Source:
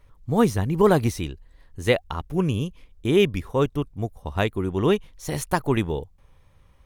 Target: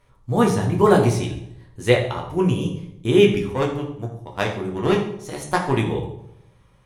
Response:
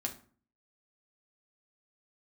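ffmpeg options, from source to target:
-filter_complex "[0:a]lowshelf=f=97:g=-11,asettb=1/sr,asplit=3[a][b][c];[a]atrim=end=3.534[d];[b]atrim=start=3.53:end=5.77,asetpts=PTS-STARTPTS,afade=t=in:d=0.004:c=qsin,afade=t=out:st=2.236:d=0.004:c=qsin,aeval=exprs='0.562*(cos(1*acos(clip(val(0)/0.562,-1,1)))-cos(1*PI/2))+0.0447*(cos(7*acos(clip(val(0)/0.562,-1,1)))-cos(7*PI/2))':c=same[e];[c]atrim=start=5.766[f];[d][e]acrossfade=d=0.004:c1=hsin:c2=qsin[g];[g][f]acrossfade=d=0.004:c1=qsin:c2=hsin[h];[1:a]atrim=start_sample=2205,asetrate=22491,aresample=44100[i];[h][i]afir=irnorm=-1:irlink=0,volume=-1.5dB"

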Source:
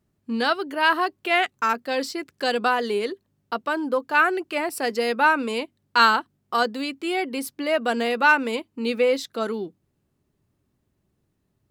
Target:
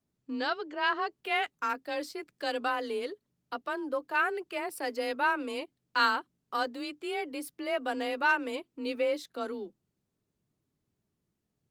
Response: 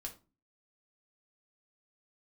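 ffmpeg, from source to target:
-af "afreqshift=26,volume=-9dB" -ar 48000 -c:a libopus -b:a 24k

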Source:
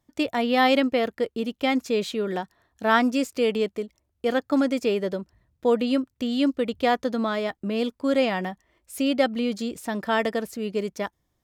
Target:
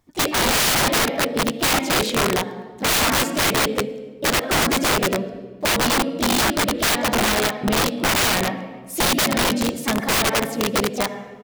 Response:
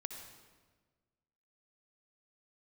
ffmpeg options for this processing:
-filter_complex "[0:a]asplit=4[a][b][c][d];[b]asetrate=29433,aresample=44100,atempo=1.49831,volume=-12dB[e];[c]asetrate=52444,aresample=44100,atempo=0.840896,volume=-7dB[f];[d]asetrate=55563,aresample=44100,atempo=0.793701,volume=-14dB[g];[a][e][f][g]amix=inputs=4:normalize=0,asplit=2[h][i];[1:a]atrim=start_sample=2205[j];[i][j]afir=irnorm=-1:irlink=0,volume=3dB[k];[h][k]amix=inputs=2:normalize=0,aeval=exprs='(mod(4.73*val(0)+1,2)-1)/4.73':c=same"

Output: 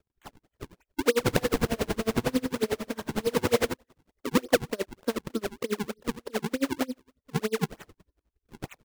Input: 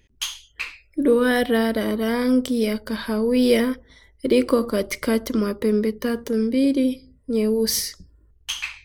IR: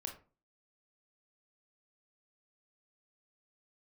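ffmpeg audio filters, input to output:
-filter_complex "[0:a]acrossover=split=270 2400:gain=0.224 1 0.141[a][b][c];[a][b][c]amix=inputs=3:normalize=0,acrusher=samples=41:mix=1:aa=0.000001:lfo=1:lforange=65.6:lforate=3.3,asplit=3[d][e][f];[d]afade=t=out:st=1.24:d=0.02[g];[e]aecho=1:1:50|120|218|355.2|547.3:0.631|0.398|0.251|0.158|0.1,afade=t=in:st=1.24:d=0.02,afade=t=out:st=3.72:d=0.02[h];[f]afade=t=in:st=3.72:d=0.02[i];[g][h][i]amix=inputs=3:normalize=0,aeval=exprs='val(0)*pow(10,-30*(0.5-0.5*cos(2*PI*11*n/s))/20)':c=same"

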